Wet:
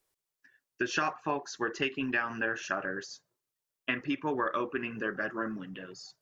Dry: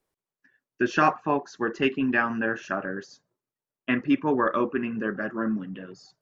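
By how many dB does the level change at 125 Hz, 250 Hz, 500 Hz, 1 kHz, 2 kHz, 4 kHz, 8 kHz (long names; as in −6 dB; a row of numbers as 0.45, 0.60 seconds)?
−8.0 dB, −10.0 dB, −7.5 dB, −7.5 dB, −4.0 dB, −0.5 dB, can't be measured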